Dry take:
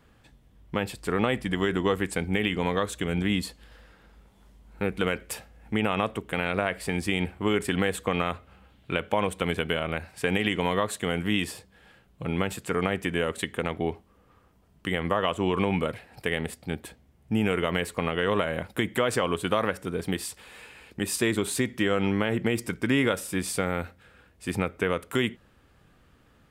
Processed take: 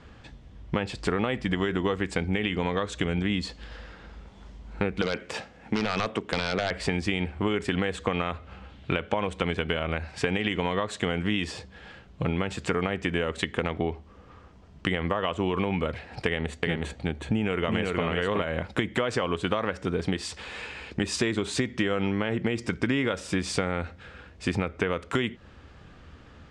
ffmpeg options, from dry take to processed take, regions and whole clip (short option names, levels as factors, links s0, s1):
-filter_complex "[0:a]asettb=1/sr,asplit=3[s0][s1][s2];[s0]atrim=end=5.024[s3];[s1]atrim=start=5.02:end=6.71,asetpts=PTS-STARTPTS,afade=t=in:d=0.004:c=qsin,afade=t=out:st=1.686:d=0.004:c=qsin,deesser=0.75,highpass=150,aeval=exprs='0.1*(abs(mod(val(0)/0.1+3,4)-2)-1)':c=same[s4];[s2]atrim=start=6.706[s5];[s3][s4]acrossfade=d=0.004:c1=hsin:c2=qsin[s6];[s6][s5]acrossfade=d=0.004:c1=qsin:c2=hsin,asettb=1/sr,asplit=3[s7][s8][s9];[s7]atrim=end=16.264[s10];[s8]atrim=start=16.26:end=18.42,asetpts=PTS-STARTPTS,afade=t=in:d=0.004:c=qsin,afade=t=out:st=2.156:d=0.004:c=qsin,bandreject=f=5100:w=5.1,aecho=1:1:370:0.668,atrim=end_sample=95256[s11];[s9]atrim=start=18.416[s12];[s10][s11]acrossfade=d=0.004:c1=hsin:c2=qsin[s13];[s13][s12]acrossfade=d=0.004:c1=qsin:c2=hsin,lowpass=f=6600:w=0.5412,lowpass=f=6600:w=1.3066,equalizer=f=76:w=7.4:g=9.5,acompressor=threshold=0.0224:ratio=5,volume=2.82"